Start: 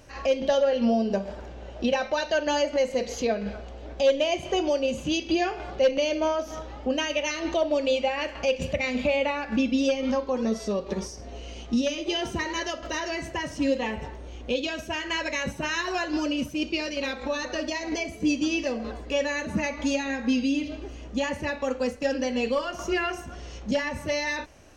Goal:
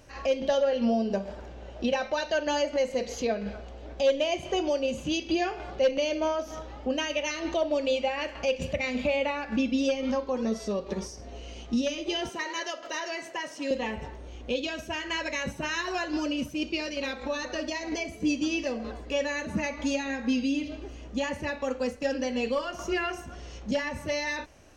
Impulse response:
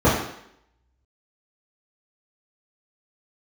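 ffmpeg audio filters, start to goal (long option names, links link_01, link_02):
-filter_complex "[0:a]asettb=1/sr,asplit=3[link_01][link_02][link_03];[link_01]atrim=end=12.294[link_04];[link_02]atrim=start=12.29:end=13.71,asetpts=PTS-STARTPTS,afade=type=in:duration=0.004:curve=qsin,afade=type=out:start_time=1.416:duration=0.004:curve=qsin,highpass=410[link_05];[link_03]atrim=start=13.706[link_06];[link_04][link_05]acrossfade=duration=0.004:curve1=hsin:curve2=qsin[link_07];[link_07][link_06]acrossfade=duration=0.004:curve1=qsin:curve2=hsin,volume=-2.5dB"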